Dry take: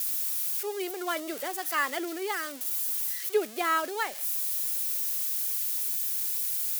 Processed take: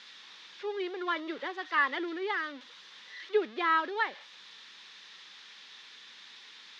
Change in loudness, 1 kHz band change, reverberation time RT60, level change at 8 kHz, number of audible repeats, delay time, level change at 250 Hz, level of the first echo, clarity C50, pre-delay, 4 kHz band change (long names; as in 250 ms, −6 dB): −3.5 dB, −0.5 dB, no reverb audible, below −25 dB, no echo audible, no echo audible, −1.0 dB, no echo audible, no reverb audible, no reverb audible, −3.0 dB